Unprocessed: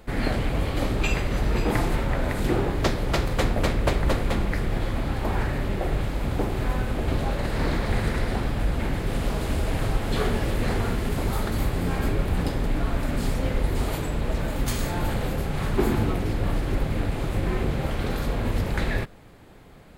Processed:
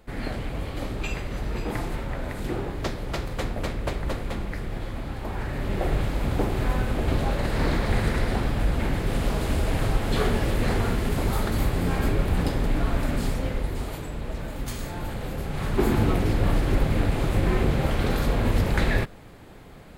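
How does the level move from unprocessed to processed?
0:05.37 −6 dB
0:05.81 +1 dB
0:13.06 +1 dB
0:13.91 −6 dB
0:15.15 −6 dB
0:16.14 +3 dB

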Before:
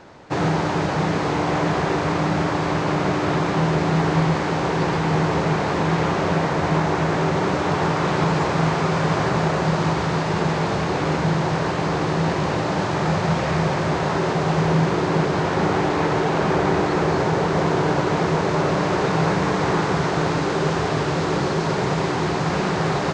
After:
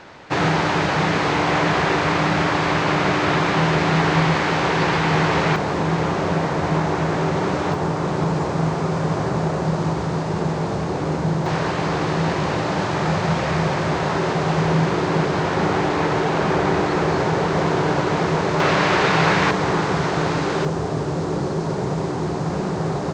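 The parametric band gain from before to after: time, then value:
parametric band 2,500 Hz 2.5 octaves
+7.5 dB
from 0:05.56 −1.5 dB
from 0:07.74 −7.5 dB
from 0:11.46 +1.5 dB
from 0:18.60 +10 dB
from 0:19.51 +1 dB
from 0:20.65 −10.5 dB

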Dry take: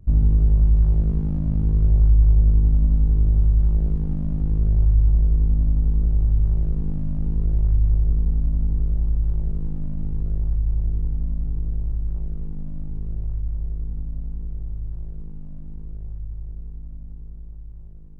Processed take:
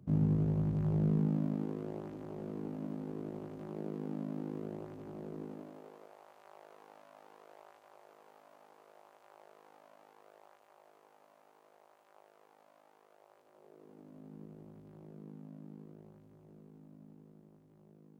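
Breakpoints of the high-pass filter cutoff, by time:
high-pass filter 24 dB per octave
0:01.02 140 Hz
0:01.68 260 Hz
0:05.39 260 Hz
0:06.17 670 Hz
0:13.17 670 Hz
0:14.40 210 Hz

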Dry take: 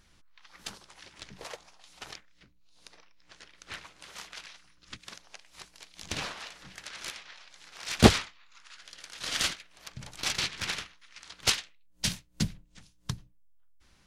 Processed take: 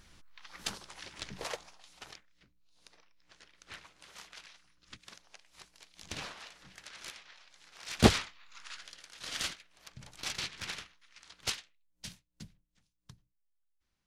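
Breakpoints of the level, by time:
0:01.54 +3.5 dB
0:02.11 −6.5 dB
0:07.92 −6.5 dB
0:08.71 +5.5 dB
0:09.05 −7 dB
0:11.31 −7 dB
0:12.43 −20 dB

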